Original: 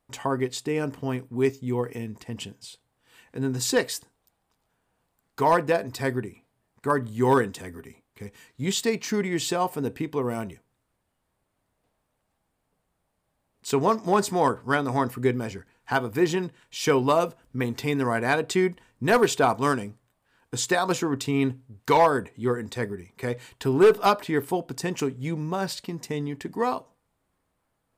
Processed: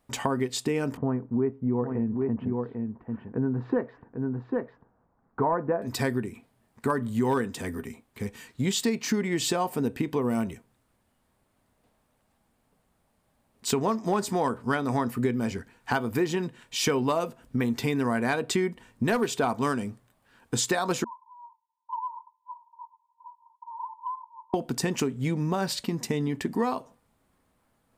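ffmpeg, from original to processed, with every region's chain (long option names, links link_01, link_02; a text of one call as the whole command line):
ffmpeg -i in.wav -filter_complex "[0:a]asettb=1/sr,asplit=3[link_01][link_02][link_03];[link_01]atrim=end=0.974[link_04];[link_02]atrim=start=0.97:end=5.82,asetpts=PTS-STARTPTS,afade=type=in:duration=0.004:curve=qsin,afade=type=out:start_time=4.846:duration=0.004:curve=qsin,lowpass=frequency=1400:width=0.5412,lowpass=frequency=1400:width=1.3066,aecho=1:1:796:0.398,atrim=end_sample=213885[link_05];[link_03]atrim=start=5.816[link_06];[link_04][link_05]acrossfade=duration=0.004:curve1=hsin:curve2=qsin[link_07];[link_07][link_06]acrossfade=duration=0.004:curve1=qsin:curve2=hsin,asettb=1/sr,asplit=3[link_08][link_09][link_10];[link_08]atrim=end=21.044[link_11];[link_09]atrim=start=21.04:end=24.54,asetpts=PTS-STARTPTS,afade=type=in:duration=0.004:curve=qsin,afade=type=out:start_time=3.496:duration=0.004:curve=qsin,asuperpass=centerf=960:order=20:qfactor=6.5,acompressor=threshold=-34dB:ratio=16:attack=3.2:release=140:knee=1:detection=peak[link_12];[link_10]atrim=start=24.536[link_13];[link_11][link_12]acrossfade=duration=0.004:curve1=hsin:curve2=qsin[link_14];[link_14][link_13]acrossfade=duration=0.004:curve1=qsin:curve2=hsin,equalizer=frequency=230:width_type=o:width=0.24:gain=8,acompressor=threshold=-29dB:ratio=4,volume=5dB" out.wav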